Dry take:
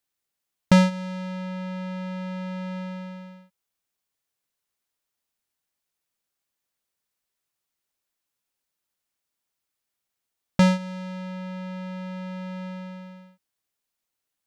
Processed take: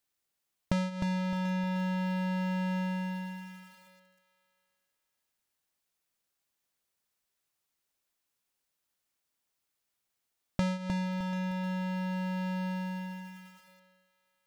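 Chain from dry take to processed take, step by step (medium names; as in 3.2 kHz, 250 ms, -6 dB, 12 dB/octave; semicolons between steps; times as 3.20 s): compression 12:1, threshold -28 dBFS, peak gain reduction 15 dB; on a send: thinning echo 737 ms, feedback 17%, high-pass 940 Hz, level -12.5 dB; on the sum: bit-crushed delay 307 ms, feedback 35%, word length 9-bit, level -5.5 dB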